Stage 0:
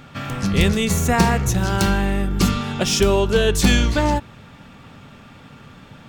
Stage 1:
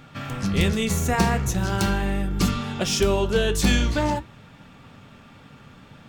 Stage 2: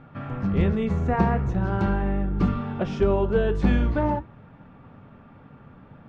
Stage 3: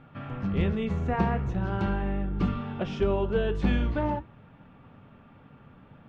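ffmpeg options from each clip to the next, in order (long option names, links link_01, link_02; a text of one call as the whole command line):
ffmpeg -i in.wav -af "flanger=delay=6.3:depth=8.6:regen=-67:speed=0.44:shape=sinusoidal" out.wav
ffmpeg -i in.wav -af "lowpass=1300" out.wav
ffmpeg -i in.wav -af "equalizer=frequency=3000:width_type=o:width=0.84:gain=6,volume=-4.5dB" out.wav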